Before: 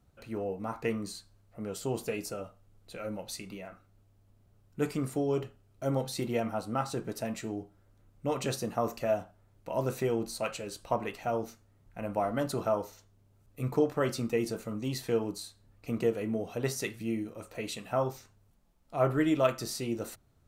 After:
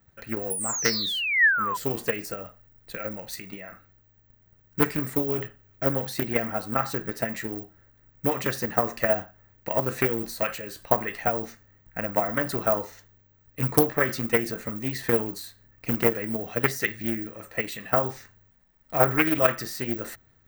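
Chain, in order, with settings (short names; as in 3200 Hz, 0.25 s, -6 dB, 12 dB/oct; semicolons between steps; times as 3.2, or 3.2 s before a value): careless resampling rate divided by 2×, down filtered, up zero stuff; painted sound fall, 0.5–1.77, 970–11000 Hz -29 dBFS; transient shaper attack +9 dB, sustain +5 dB; bell 1800 Hz +14.5 dB 0.44 oct; Doppler distortion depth 0.41 ms; gain -1 dB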